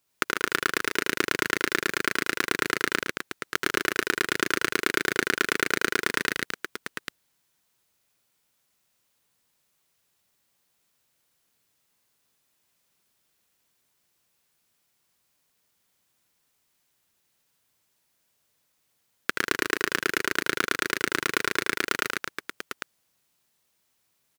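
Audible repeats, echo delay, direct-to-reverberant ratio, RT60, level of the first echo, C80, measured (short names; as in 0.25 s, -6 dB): 4, 78 ms, none, none, -5.5 dB, none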